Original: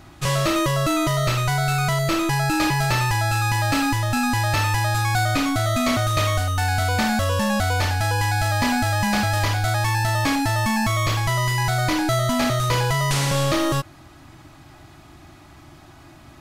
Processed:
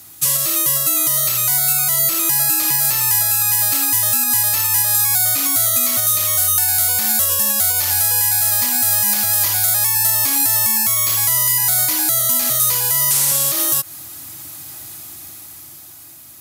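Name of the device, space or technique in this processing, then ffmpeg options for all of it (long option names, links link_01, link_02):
FM broadcast chain: -filter_complex "[0:a]highpass=frequency=71:width=0.5412,highpass=frequency=71:width=1.3066,dynaudnorm=framelen=310:gausssize=9:maxgain=11.5dB,acrossover=split=510|1800[link_01][link_02][link_03];[link_01]acompressor=threshold=-23dB:ratio=4[link_04];[link_02]acompressor=threshold=-20dB:ratio=4[link_05];[link_03]acompressor=threshold=-26dB:ratio=4[link_06];[link_04][link_05][link_06]amix=inputs=3:normalize=0,aemphasis=mode=production:type=75fm,alimiter=limit=-10dB:level=0:latency=1:release=156,asoftclip=type=hard:threshold=-12.5dB,lowpass=frequency=15000:width=0.5412,lowpass=frequency=15000:width=1.3066,aemphasis=mode=production:type=75fm,volume=-6.5dB"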